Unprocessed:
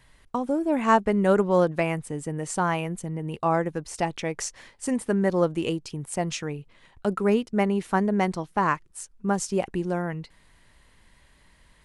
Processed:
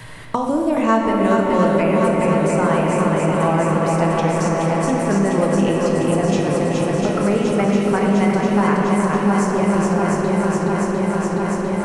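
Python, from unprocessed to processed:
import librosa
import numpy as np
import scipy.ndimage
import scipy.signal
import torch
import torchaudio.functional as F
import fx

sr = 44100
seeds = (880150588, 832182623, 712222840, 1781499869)

y = fx.peak_eq(x, sr, hz=110.0, db=12.5, octaves=0.28)
y = fx.echo_swing(y, sr, ms=701, ratio=1.5, feedback_pct=69, wet_db=-4.5)
y = fx.room_shoebox(y, sr, seeds[0], volume_m3=210.0, walls='hard', distance_m=0.55)
y = fx.band_squash(y, sr, depth_pct=70)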